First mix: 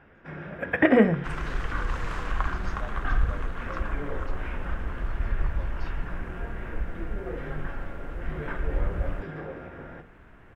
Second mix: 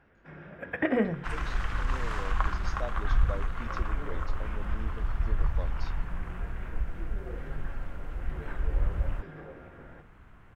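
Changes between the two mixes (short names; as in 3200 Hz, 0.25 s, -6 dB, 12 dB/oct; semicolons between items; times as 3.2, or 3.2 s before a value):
speech +5.5 dB; first sound -8.0 dB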